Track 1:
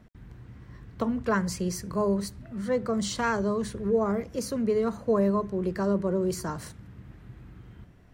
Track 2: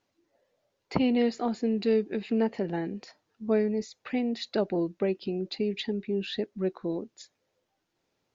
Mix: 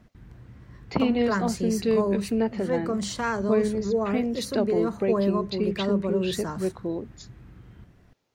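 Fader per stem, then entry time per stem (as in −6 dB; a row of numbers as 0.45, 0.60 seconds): −0.5, +1.5 decibels; 0.00, 0.00 seconds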